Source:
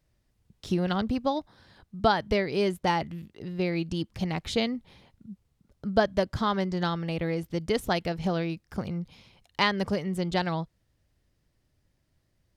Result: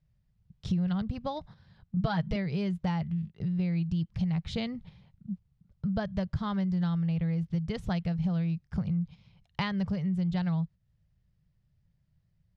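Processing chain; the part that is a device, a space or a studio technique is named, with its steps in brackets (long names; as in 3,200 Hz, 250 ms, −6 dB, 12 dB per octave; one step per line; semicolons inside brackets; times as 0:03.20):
noise gate −46 dBFS, range −9 dB
jukebox (low-pass filter 5,200 Hz 12 dB per octave; low shelf with overshoot 220 Hz +9 dB, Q 3; downward compressor 3 to 1, threshold −31 dBFS, peak gain reduction 14 dB)
0:01.96–0:02.36: comb filter 6.3 ms, depth 82%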